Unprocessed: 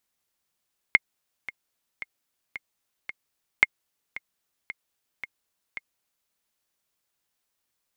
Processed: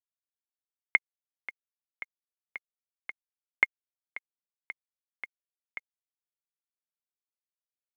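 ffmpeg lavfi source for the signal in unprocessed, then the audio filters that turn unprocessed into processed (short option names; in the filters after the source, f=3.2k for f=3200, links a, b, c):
-f lavfi -i "aevalsrc='pow(10,(-2.5-18.5*gte(mod(t,5*60/112),60/112))/20)*sin(2*PI*2140*mod(t,60/112))*exp(-6.91*mod(t,60/112)/0.03)':d=5.35:s=44100"
-af "asoftclip=type=tanh:threshold=-4.5dB,highpass=290,lowpass=2.5k,acrusher=bits=11:mix=0:aa=0.000001"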